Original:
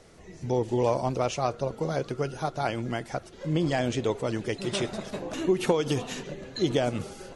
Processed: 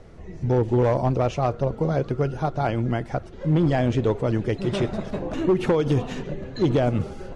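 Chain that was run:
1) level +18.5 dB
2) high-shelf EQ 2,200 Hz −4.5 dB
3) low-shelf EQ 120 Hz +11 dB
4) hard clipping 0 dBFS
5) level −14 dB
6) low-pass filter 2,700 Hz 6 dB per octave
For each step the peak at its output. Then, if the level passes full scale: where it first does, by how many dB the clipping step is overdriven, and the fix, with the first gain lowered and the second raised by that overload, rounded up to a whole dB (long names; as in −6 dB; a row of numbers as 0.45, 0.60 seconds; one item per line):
+6.5, +6.5, +9.5, 0.0, −14.0, −14.0 dBFS
step 1, 9.5 dB
step 1 +8.5 dB, step 5 −4 dB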